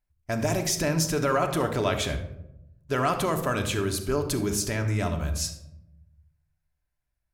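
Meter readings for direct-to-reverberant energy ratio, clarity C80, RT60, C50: 5.0 dB, 11.5 dB, 0.85 s, 9.0 dB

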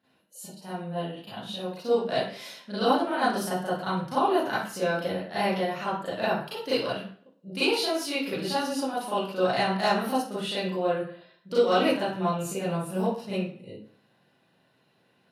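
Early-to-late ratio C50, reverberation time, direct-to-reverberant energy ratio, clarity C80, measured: 0.0 dB, 0.50 s, -12.0 dB, 6.0 dB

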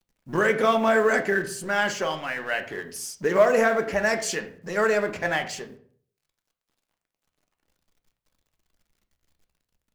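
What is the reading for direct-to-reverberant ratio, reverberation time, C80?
6.0 dB, 0.50 s, 15.5 dB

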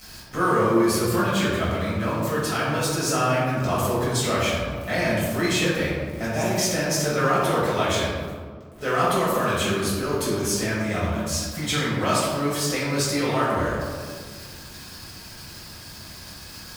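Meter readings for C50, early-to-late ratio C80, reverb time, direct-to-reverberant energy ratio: -1.0 dB, 1.5 dB, 1.8 s, -9.0 dB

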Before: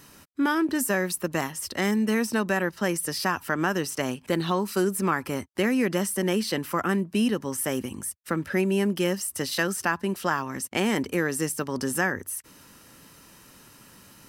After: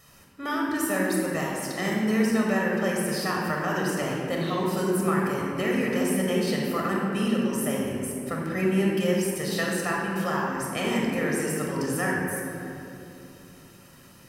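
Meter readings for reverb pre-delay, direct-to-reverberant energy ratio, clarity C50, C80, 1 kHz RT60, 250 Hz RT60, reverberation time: 26 ms, -2.5 dB, -0.5 dB, 1.0 dB, 2.5 s, 3.6 s, 2.9 s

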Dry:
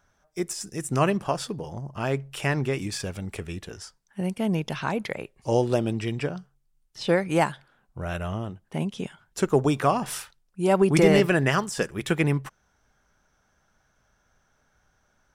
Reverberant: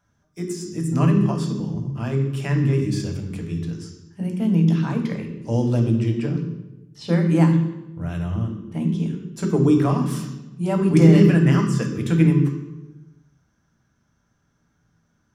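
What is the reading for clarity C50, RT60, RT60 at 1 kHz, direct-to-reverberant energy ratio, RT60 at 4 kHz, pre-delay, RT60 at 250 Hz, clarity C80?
5.5 dB, 1.0 s, 0.95 s, 1.5 dB, 0.75 s, 3 ms, 1.4 s, 7.5 dB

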